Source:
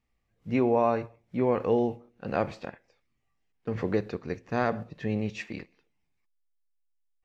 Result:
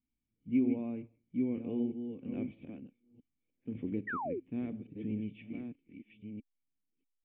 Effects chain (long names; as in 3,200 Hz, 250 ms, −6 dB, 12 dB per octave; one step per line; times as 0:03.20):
delay that plays each chunk backwards 640 ms, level −7 dB
formant resonators in series i
sound drawn into the spectrogram fall, 0:04.07–0:04.40, 320–2,000 Hz −37 dBFS